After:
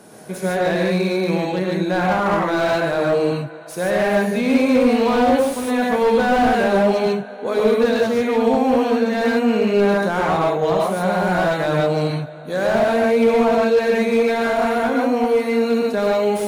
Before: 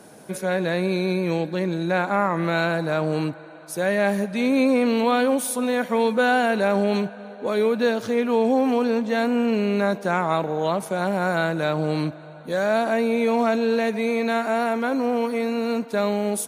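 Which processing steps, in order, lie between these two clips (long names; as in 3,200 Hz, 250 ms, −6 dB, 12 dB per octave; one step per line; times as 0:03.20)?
reverb whose tail is shaped and stops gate 170 ms rising, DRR −2 dB
slew-rate limiting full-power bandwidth 140 Hz
level +1 dB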